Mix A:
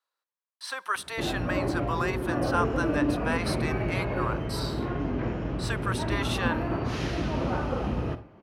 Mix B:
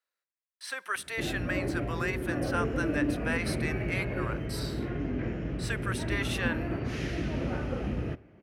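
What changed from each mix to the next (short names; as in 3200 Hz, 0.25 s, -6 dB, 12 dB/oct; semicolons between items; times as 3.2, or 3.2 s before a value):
background: send -11.5 dB; master: add graphic EQ 1000/2000/4000 Hz -11/+5/-5 dB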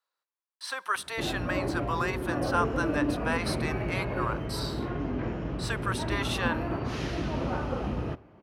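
master: add graphic EQ 1000/2000/4000 Hz +11/-5/+5 dB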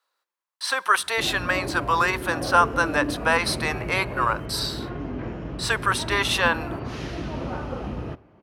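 speech +10.0 dB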